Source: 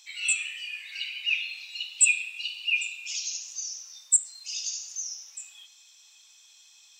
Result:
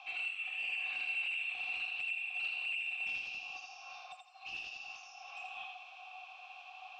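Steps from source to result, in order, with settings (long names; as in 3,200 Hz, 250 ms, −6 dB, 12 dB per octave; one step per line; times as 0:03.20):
ceiling on every frequency bin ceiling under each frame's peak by 15 dB
dynamic equaliser 5,400 Hz, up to +7 dB, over −52 dBFS, Q 7.8
downward compressor 12 to 1, threshold −38 dBFS, peak gain reduction 24 dB
formant filter a
hollow resonant body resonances 740/2,700 Hz, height 18 dB, ringing for 65 ms
mid-hump overdrive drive 23 dB, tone 3,500 Hz, clips at −32 dBFS
high-frequency loss of the air 170 metres
feedback echo with a high-pass in the loop 82 ms, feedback 29%, high-pass 540 Hz, level −4 dB
level +4.5 dB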